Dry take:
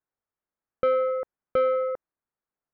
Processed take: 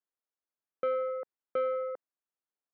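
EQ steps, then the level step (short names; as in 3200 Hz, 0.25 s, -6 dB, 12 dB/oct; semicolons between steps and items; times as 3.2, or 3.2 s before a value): BPF 250–3500 Hz; -7.5 dB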